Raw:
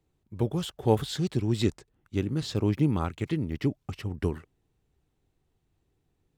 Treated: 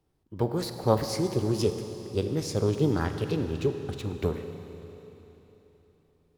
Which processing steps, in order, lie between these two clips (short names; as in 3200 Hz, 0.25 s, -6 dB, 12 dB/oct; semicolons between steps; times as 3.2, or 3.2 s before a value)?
formant shift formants +5 st; Schroeder reverb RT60 3.6 s, combs from 33 ms, DRR 7 dB